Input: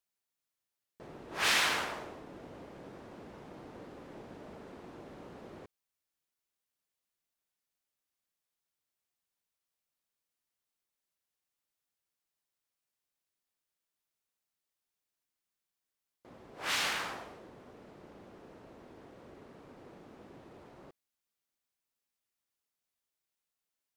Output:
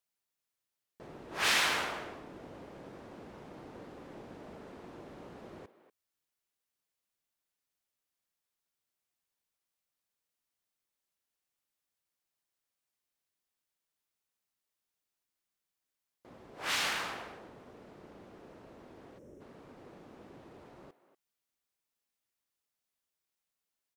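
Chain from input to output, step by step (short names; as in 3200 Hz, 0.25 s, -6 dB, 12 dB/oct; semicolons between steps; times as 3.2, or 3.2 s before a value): spectral delete 19.18–19.41, 630–5200 Hz; speakerphone echo 0.24 s, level -13 dB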